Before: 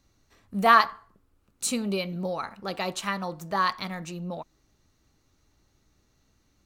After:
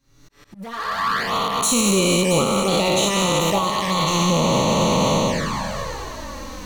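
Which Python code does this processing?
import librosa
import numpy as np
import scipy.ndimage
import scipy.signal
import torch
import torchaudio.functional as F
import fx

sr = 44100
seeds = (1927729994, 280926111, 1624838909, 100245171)

y = fx.spec_trails(x, sr, decay_s=2.97)
y = fx.recorder_agc(y, sr, target_db=-4.5, rise_db_per_s=67.0, max_gain_db=30)
y = np.clip(y, -10.0 ** (-11.0 / 20.0), 10.0 ** (-11.0 / 20.0))
y = fx.auto_swell(y, sr, attack_ms=792.0)
y = fx.echo_swing(y, sr, ms=888, ratio=3, feedback_pct=37, wet_db=-14)
y = fx.env_flanger(y, sr, rest_ms=7.5, full_db=-12.5)
y = fx.peak_eq(y, sr, hz=710.0, db=-7.0, octaves=0.28)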